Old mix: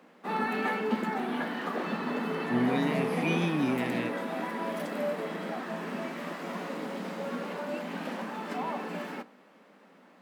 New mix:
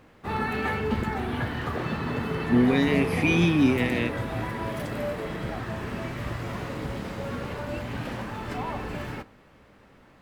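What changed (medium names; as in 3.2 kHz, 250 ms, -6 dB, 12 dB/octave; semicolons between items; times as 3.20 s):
speech +8.0 dB; background: remove rippled Chebyshev high-pass 170 Hz, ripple 3 dB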